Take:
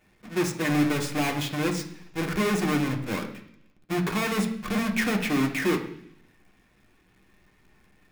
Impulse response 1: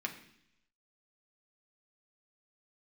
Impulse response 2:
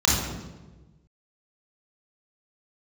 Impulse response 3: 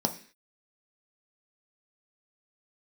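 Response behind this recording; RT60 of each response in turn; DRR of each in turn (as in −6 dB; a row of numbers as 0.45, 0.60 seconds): 1; 0.70, 1.2, 0.45 seconds; 1.5, −4.5, 5.0 decibels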